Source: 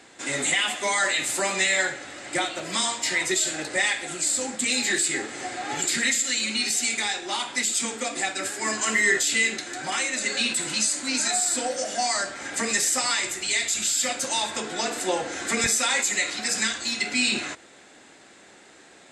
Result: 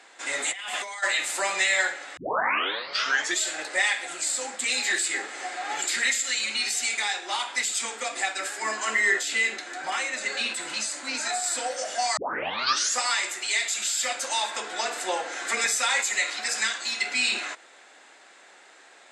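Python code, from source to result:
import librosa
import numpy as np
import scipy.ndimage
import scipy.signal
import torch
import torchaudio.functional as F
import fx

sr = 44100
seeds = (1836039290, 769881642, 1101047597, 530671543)

y = fx.over_compress(x, sr, threshold_db=-33.0, ratio=-1.0, at=(0.51, 1.02), fade=0.02)
y = fx.tilt_eq(y, sr, slope=-1.5, at=(8.62, 11.44))
y = fx.edit(y, sr, fx.tape_start(start_s=2.17, length_s=1.23),
    fx.tape_start(start_s=12.17, length_s=0.83), tone=tone)
y = scipy.signal.sosfilt(scipy.signal.butter(2, 800.0, 'highpass', fs=sr, output='sos'), y)
y = fx.tilt_eq(y, sr, slope=-2.0)
y = y * librosa.db_to_amplitude(2.5)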